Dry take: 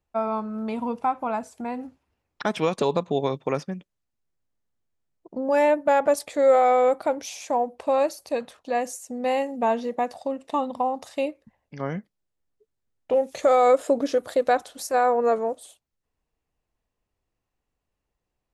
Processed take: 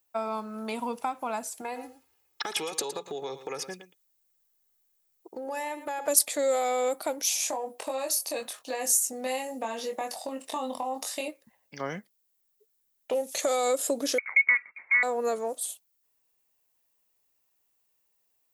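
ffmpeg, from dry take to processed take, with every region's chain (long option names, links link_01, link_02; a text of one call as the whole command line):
ffmpeg -i in.wav -filter_complex "[0:a]asettb=1/sr,asplit=3[link_01][link_02][link_03];[link_01]atrim=end=1.614[link_04];[link_02]atrim=start=1.61:end=6.08,asetpts=PTS-STARTPTS,afade=type=in:duration=0.004:curve=qsin,afade=type=out:start_time=4.466:duration=0.004:curve=qsin,aecho=1:1:2.4:0.66,atrim=end_sample=197127,acompressor=threshold=-29dB:ratio=6:attack=3.2:release=140:knee=1:detection=peak,aecho=1:1:113:0.237,atrim=end_sample=197127[link_05];[link_03]atrim=start=6.076[link_06];[link_04][link_05]acrossfade=duration=0.004:curve1=hsin:curve2=qsin[link_07];[link_07][link_06]acrossfade=duration=0.004:curve1=qsin:curve2=hsin,asettb=1/sr,asplit=3[link_08][link_09][link_10];[link_08]atrim=end=7.374[link_11];[link_09]atrim=start=7.37:end=11.28,asetpts=PTS-STARTPTS,afade=type=in:duration=0.004:curve=qsin,afade=type=out:start_time=3.906:duration=0.004:curve=qsin,acompressor=threshold=-26dB:ratio=6:attack=3.2:release=140:knee=1:detection=peak,asplit=2[link_12][link_13];[link_13]adelay=23,volume=-4dB[link_14];[link_12][link_14]amix=inputs=2:normalize=0,atrim=end_sample=172431[link_15];[link_10]atrim=start=11.276[link_16];[link_11][link_15]acrossfade=duration=0.004:curve1=hsin:curve2=qsin[link_17];[link_17][link_16]acrossfade=duration=0.004:curve1=qsin:curve2=hsin,asettb=1/sr,asplit=3[link_18][link_19][link_20];[link_18]atrim=end=14.184[link_21];[link_19]atrim=start=14.18:end=15.03,asetpts=PTS-STARTPTS,afade=type=in:duration=0.004:curve=qsin,afade=type=out:start_time=0.846:duration=0.004:curve=qsin,agate=range=-19dB:threshold=-46dB:ratio=16:release=100:detection=peak,lowshelf=frequency=290:width_type=q:width=3:gain=-10,lowpass=frequency=2300:width_type=q:width=0.5098,lowpass=frequency=2300:width_type=q:width=0.6013,lowpass=frequency=2300:width_type=q:width=0.9,lowpass=frequency=2300:width_type=q:width=2.563,afreqshift=-2700[link_22];[link_20]atrim=start=15.026[link_23];[link_21][link_22]acrossfade=duration=0.004:curve1=hsin:curve2=qsin[link_24];[link_24][link_23]acrossfade=duration=0.004:curve1=qsin:curve2=hsin,acrossover=split=420|3000[link_25][link_26][link_27];[link_26]acompressor=threshold=-29dB:ratio=6[link_28];[link_25][link_28][link_27]amix=inputs=3:normalize=0,aemphasis=mode=production:type=riaa" out.wav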